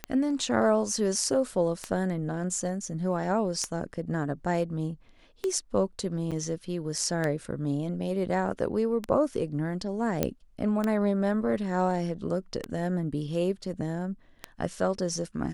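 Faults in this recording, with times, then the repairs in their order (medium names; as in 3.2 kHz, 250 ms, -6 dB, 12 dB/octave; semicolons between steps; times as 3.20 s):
tick 33 1/3 rpm -15 dBFS
6.31–6.32 s: dropout 7.1 ms
10.23 s: pop -10 dBFS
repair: de-click; interpolate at 6.31 s, 7.1 ms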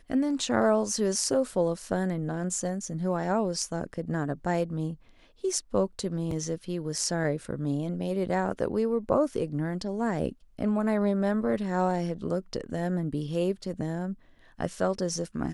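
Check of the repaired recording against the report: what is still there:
nothing left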